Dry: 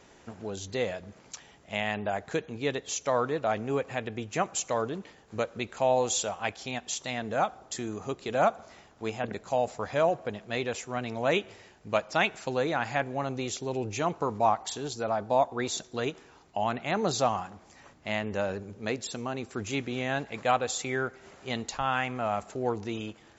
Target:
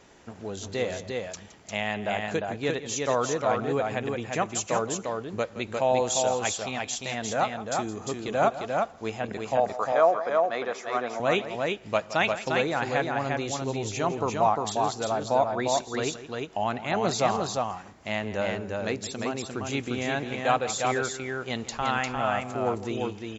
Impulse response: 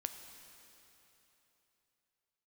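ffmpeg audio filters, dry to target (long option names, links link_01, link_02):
-filter_complex "[0:a]asettb=1/sr,asplit=3[link_01][link_02][link_03];[link_01]atrim=end=9.574[link_04];[link_02]atrim=start=9.57:end=11.2,asetpts=PTS-STARTPTS,afade=type=in:duration=0.004:curve=qsin,afade=type=out:start_time=1.626:duration=0.004:curve=qsin,highpass=340,equalizer=frequency=690:width_type=q:width=4:gain=5,equalizer=frequency=1200:width_type=q:width=4:gain=10,equalizer=frequency=2800:width_type=q:width=4:gain=-9,equalizer=frequency=4100:width_type=q:width=4:gain=-5,lowpass=frequency=5800:width=0.5412,lowpass=frequency=5800:width=1.3066[link_05];[link_03]atrim=start=11.196[link_06];[link_04][link_05]acrossfade=duration=0.004:curve1=hsin:curve2=qsin[link_07];[link_07][link_06]acrossfade=duration=0.004:curve1=qsin:curve2=hsin,aecho=1:1:167|351:0.188|0.668,volume=1dB"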